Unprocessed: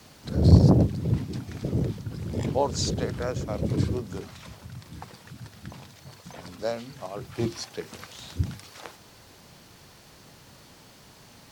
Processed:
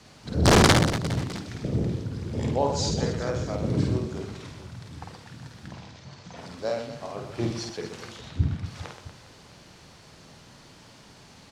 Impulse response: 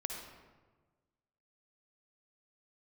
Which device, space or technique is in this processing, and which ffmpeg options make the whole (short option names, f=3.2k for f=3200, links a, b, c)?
overflowing digital effects unit: -filter_complex "[0:a]aeval=exprs='(mod(3.16*val(0)+1,2)-1)/3.16':c=same,lowpass=8k,asettb=1/sr,asplit=3[a][b][c];[a]atrim=end=0.634[d];[b]atrim=start=0.63:end=1.55,asetpts=PTS-STARTPTS,afade=t=in:d=0.004:c=qsin,afade=t=out:st=0.916:d=0.004:c=qsin,tiltshelf=f=810:g=-4.5[e];[c]atrim=start=1.546[f];[d][e]acrossfade=d=0.004:c1=hsin:c2=qsin[g];[g][f]acrossfade=d=0.004:c1=qsin:c2=hsin,asettb=1/sr,asplit=3[h][i][j];[h]atrim=end=5.684[k];[i]atrim=start=5.68:end=6.37,asetpts=PTS-STARTPTS,afade=t=in:d=0.004:c=qsin,afade=t=out:st=0.686:d=0.004:c=qsin,lowpass=f=6.9k:w=0.5412,lowpass=f=6.9k:w=1.3066[l];[j]atrim=start=6.366[m];[k][l]acrossfade=d=0.004:c1=hsin:c2=qsin[n];[n][m]acrossfade=d=0.004:c1=qsin:c2=hsin,asettb=1/sr,asplit=3[o][p][q];[o]atrim=end=8.164[r];[p]atrim=start=8.16:end=8.66,asetpts=PTS-STARTPTS,afade=t=in:d=0.004:c=qsin,afade=t=out:st=0.496:d=0.004:c=qsin,bass=f=250:g=4,treble=f=4k:g=-12[s];[q]atrim=start=8.656[t];[r][s]acrossfade=d=0.004:c1=hsin:c2=qsin[u];[u][t]acrossfade=d=0.004:c1=qsin:c2=hsin,aecho=1:1:50|125|237.5|406.2|659.4:0.631|0.398|0.251|0.158|0.1,volume=-1dB"